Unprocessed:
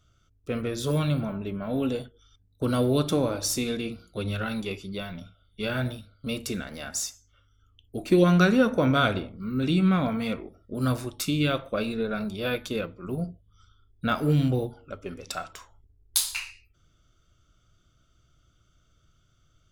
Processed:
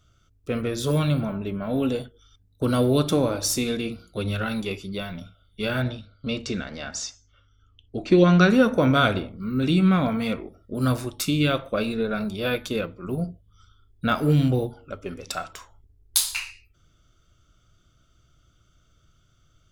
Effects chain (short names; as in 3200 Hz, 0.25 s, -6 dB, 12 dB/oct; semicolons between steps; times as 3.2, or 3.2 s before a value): 5.82–8.5 LPF 6100 Hz 24 dB/oct; gain +3 dB